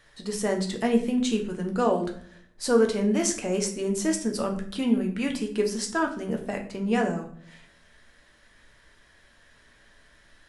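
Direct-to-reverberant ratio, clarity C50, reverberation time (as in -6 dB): 2.0 dB, 10.0 dB, 0.55 s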